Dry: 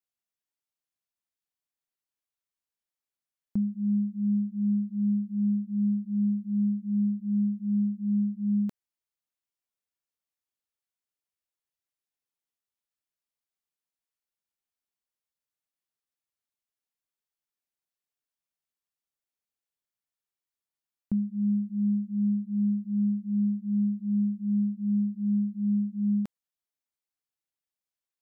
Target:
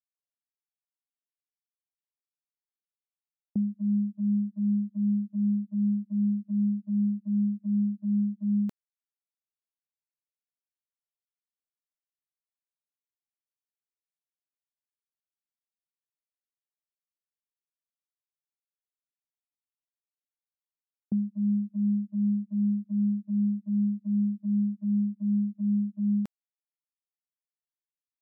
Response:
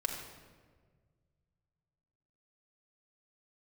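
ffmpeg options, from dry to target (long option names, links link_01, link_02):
-af "agate=range=-25dB:threshold=-32dB:ratio=16:detection=peak"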